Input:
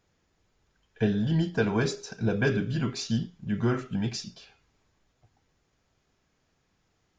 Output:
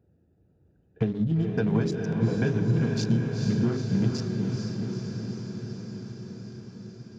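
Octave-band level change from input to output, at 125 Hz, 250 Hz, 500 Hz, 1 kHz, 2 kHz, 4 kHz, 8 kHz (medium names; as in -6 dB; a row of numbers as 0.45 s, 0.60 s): +4.5 dB, +3.0 dB, +0.5 dB, -3.0 dB, -4.5 dB, -3.0 dB, no reading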